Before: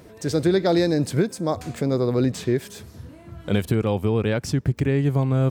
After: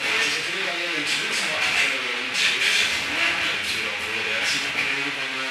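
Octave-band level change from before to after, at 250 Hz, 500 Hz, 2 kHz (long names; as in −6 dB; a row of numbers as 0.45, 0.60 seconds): −15.0, −11.5, +16.0 decibels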